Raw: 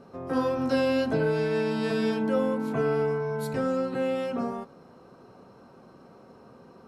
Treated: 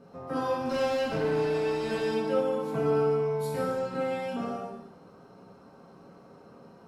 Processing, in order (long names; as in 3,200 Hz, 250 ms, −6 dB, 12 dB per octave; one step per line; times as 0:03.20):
0:00.70–0:02.05: asymmetric clip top −27.5 dBFS, bottom −19.5 dBFS
reverb whose tail is shaped and stops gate 350 ms falling, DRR −4 dB
level −6 dB